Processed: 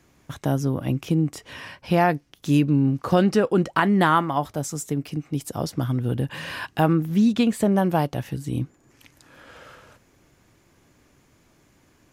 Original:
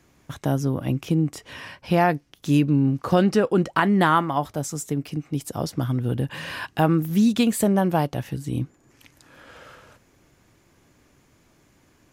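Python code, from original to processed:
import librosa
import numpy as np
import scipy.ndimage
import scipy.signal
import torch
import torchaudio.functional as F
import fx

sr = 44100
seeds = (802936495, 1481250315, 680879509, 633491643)

y = fx.high_shelf(x, sr, hz=6500.0, db=-12.0, at=(6.93, 7.72))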